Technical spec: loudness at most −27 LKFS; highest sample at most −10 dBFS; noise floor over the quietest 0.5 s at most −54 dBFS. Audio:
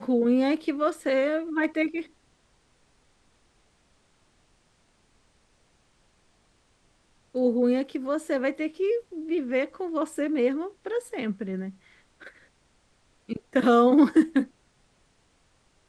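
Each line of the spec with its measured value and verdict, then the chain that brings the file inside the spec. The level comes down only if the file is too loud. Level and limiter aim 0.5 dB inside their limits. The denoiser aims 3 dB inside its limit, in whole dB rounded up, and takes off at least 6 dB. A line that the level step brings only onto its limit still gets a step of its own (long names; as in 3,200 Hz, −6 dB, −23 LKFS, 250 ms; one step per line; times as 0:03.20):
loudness −25.5 LKFS: out of spec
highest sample −8.5 dBFS: out of spec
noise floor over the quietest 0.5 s −65 dBFS: in spec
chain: level −2 dB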